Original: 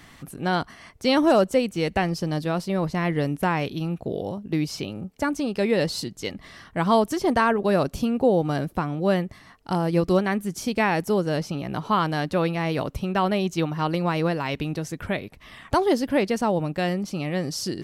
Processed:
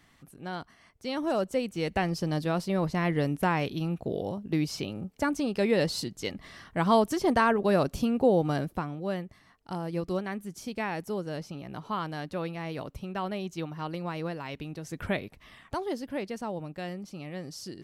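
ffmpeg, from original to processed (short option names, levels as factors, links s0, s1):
-af "volume=1.88,afade=t=in:st=1.13:d=1.16:silence=0.316228,afade=t=out:st=8.51:d=0.52:silence=0.421697,afade=t=in:st=14.82:d=0.23:silence=0.375837,afade=t=out:st=15.05:d=0.69:silence=0.316228"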